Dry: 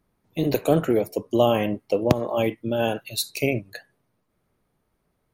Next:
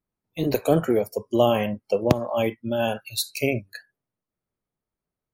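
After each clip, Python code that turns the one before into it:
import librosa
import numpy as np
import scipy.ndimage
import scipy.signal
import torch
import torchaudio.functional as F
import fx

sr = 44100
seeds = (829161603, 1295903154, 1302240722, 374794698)

y = fx.noise_reduce_blind(x, sr, reduce_db=16)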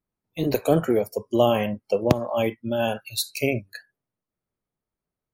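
y = x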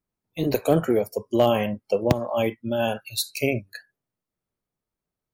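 y = np.clip(x, -10.0 ** (-8.5 / 20.0), 10.0 ** (-8.5 / 20.0))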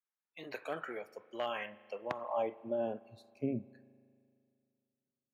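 y = fx.filter_sweep_bandpass(x, sr, from_hz=1700.0, to_hz=220.0, start_s=1.98, end_s=3.17, q=2.0)
y = fx.rev_spring(y, sr, rt60_s=2.4, pass_ms=(38,), chirp_ms=65, drr_db=19.0)
y = y * 10.0 ** (-4.5 / 20.0)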